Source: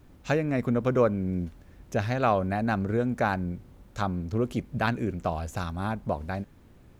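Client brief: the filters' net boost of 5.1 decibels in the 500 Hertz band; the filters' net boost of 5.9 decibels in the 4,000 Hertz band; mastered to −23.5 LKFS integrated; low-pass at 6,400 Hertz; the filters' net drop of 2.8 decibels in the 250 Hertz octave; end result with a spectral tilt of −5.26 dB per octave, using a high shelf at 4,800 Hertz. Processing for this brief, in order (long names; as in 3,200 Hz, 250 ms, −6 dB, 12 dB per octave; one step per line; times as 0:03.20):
low-pass filter 6,400 Hz
parametric band 250 Hz −5.5 dB
parametric band 500 Hz +7 dB
parametric band 4,000 Hz +4.5 dB
high-shelf EQ 4,800 Hz +6.5 dB
level +2.5 dB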